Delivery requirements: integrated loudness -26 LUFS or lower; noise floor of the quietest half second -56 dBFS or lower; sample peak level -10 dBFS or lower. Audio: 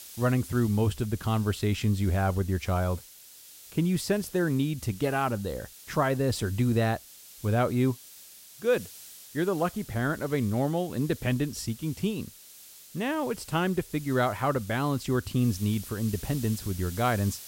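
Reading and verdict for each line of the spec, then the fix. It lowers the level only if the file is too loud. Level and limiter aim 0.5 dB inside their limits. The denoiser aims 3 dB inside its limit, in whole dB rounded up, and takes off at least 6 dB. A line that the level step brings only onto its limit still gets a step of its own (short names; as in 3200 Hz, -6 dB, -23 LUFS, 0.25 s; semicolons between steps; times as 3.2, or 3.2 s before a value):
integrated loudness -28.5 LUFS: OK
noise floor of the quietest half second -50 dBFS: fail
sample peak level -13.0 dBFS: OK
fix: denoiser 9 dB, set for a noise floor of -50 dBFS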